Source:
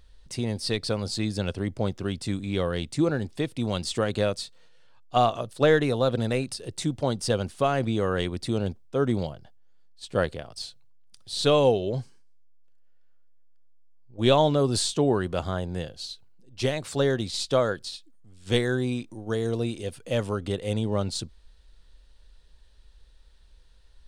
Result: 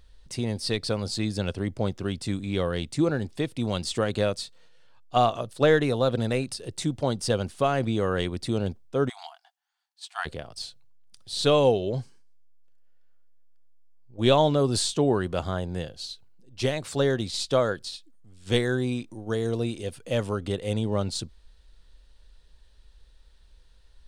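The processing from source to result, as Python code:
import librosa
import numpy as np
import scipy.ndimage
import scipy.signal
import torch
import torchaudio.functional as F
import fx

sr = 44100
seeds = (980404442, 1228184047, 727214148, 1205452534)

y = fx.brickwall_highpass(x, sr, low_hz=670.0, at=(9.08, 10.25), fade=0.02)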